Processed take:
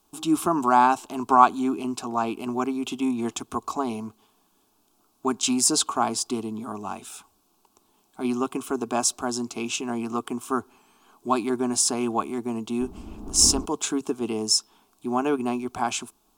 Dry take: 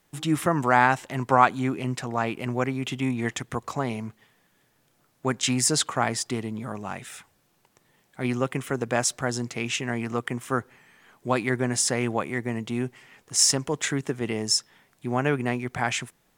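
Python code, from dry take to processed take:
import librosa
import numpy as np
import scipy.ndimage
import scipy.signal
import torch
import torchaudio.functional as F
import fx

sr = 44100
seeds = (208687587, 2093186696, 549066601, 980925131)

y = fx.dmg_wind(x, sr, seeds[0], corner_hz=210.0, level_db=-27.0, at=(12.8, 13.64), fade=0.02)
y = fx.fixed_phaser(y, sr, hz=510.0, stages=6)
y = fx.small_body(y, sr, hz=(440.0, 1100.0, 2600.0), ring_ms=45, db=6)
y = F.gain(torch.from_numpy(y), 3.0).numpy()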